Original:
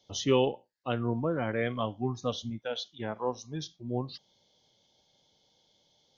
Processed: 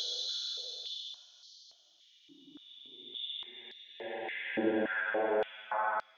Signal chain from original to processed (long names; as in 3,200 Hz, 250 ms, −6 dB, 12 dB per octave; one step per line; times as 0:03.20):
extreme stretch with random phases 20×, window 0.10 s, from 0:02.81
high-pass on a step sequencer 3.5 Hz 310–4,500 Hz